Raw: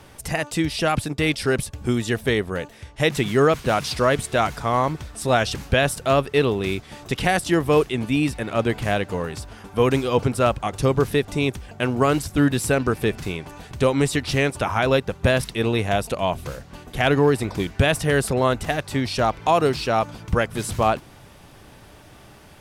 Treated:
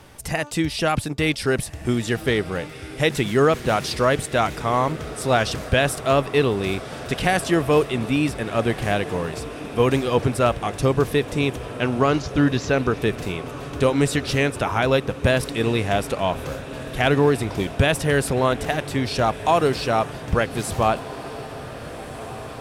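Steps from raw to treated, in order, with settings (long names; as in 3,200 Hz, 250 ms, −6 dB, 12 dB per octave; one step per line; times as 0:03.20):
0:11.66–0:13.02: Butterworth low-pass 6,900 Hz 96 dB per octave
feedback delay with all-pass diffusion 1,573 ms, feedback 68%, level −15 dB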